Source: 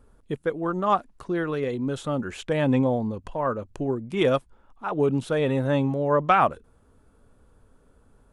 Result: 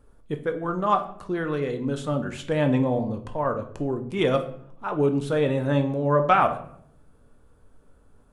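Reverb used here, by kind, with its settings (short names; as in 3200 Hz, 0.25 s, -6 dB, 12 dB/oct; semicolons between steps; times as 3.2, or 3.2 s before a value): shoebox room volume 110 m³, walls mixed, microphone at 0.39 m; gain -1 dB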